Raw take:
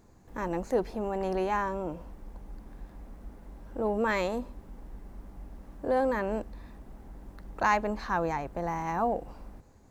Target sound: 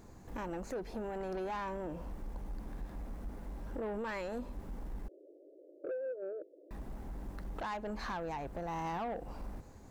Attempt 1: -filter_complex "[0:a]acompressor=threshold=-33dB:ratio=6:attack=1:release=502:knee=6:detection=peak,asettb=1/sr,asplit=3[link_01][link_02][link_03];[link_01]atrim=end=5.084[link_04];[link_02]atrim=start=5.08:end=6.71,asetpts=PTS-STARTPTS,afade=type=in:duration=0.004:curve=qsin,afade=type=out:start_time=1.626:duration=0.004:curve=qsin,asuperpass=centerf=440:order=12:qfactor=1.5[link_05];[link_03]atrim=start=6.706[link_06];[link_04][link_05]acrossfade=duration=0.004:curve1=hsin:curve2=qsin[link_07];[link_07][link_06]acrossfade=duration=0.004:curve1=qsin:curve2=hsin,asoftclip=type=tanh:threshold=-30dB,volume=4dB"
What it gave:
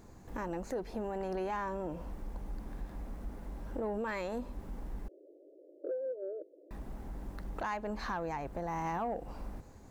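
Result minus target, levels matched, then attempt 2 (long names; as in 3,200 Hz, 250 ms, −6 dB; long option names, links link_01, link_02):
soft clipping: distortion −9 dB
-filter_complex "[0:a]acompressor=threshold=-33dB:ratio=6:attack=1:release=502:knee=6:detection=peak,asettb=1/sr,asplit=3[link_01][link_02][link_03];[link_01]atrim=end=5.084[link_04];[link_02]atrim=start=5.08:end=6.71,asetpts=PTS-STARTPTS,afade=type=in:duration=0.004:curve=qsin,afade=type=out:start_time=1.626:duration=0.004:curve=qsin,asuperpass=centerf=440:order=12:qfactor=1.5[link_05];[link_03]atrim=start=6.706[link_06];[link_04][link_05]acrossfade=duration=0.004:curve1=hsin:curve2=qsin[link_07];[link_07][link_06]acrossfade=duration=0.004:curve1=qsin:curve2=hsin,asoftclip=type=tanh:threshold=-37dB,volume=4dB"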